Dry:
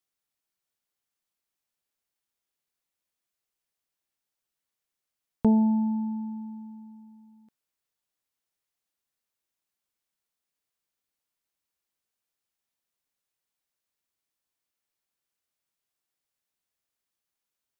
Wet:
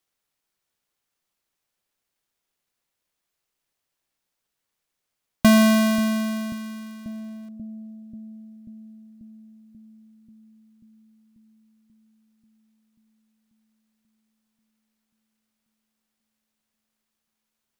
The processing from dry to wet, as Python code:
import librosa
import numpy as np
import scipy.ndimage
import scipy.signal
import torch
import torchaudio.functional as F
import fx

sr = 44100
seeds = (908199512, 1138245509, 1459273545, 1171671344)

y = fx.halfwave_hold(x, sr)
y = fx.echo_bbd(y, sr, ms=537, stages=2048, feedback_pct=71, wet_db=-12)
y = y * librosa.db_to_amplitude(3.0)